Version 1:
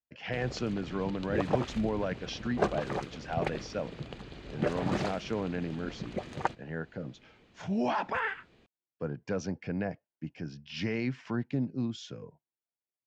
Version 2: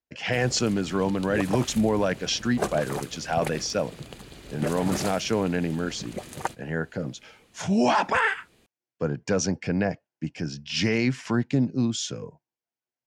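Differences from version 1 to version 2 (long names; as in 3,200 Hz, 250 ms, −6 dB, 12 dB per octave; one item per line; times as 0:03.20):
speech +8.0 dB
master: remove high-frequency loss of the air 170 metres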